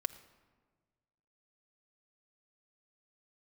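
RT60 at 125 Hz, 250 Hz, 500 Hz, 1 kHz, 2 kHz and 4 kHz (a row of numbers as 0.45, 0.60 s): 2.0, 1.7, 1.6, 1.4, 1.1, 0.85 s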